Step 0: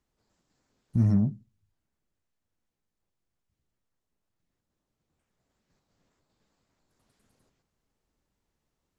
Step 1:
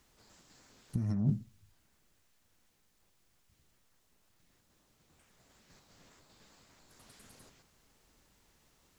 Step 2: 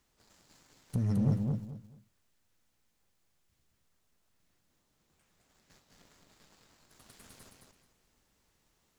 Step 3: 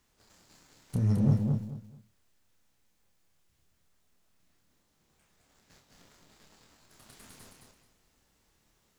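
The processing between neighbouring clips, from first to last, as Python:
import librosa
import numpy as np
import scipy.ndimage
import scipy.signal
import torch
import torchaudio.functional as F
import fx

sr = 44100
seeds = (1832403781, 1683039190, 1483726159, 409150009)

y1 = fx.tilt_shelf(x, sr, db=-3.5, hz=1100.0)
y1 = fx.over_compress(y1, sr, threshold_db=-35.0, ratio=-1.0)
y1 = F.gain(torch.from_numpy(y1), 4.5).numpy()
y2 = fx.leveller(y1, sr, passes=2)
y2 = fx.echo_feedback(y2, sr, ms=217, feedback_pct=24, wet_db=-4)
y2 = F.gain(torch.from_numpy(y2), -2.5).numpy()
y3 = fx.doubler(y2, sr, ms=28.0, db=-5)
y3 = F.gain(torch.from_numpy(y3), 1.5).numpy()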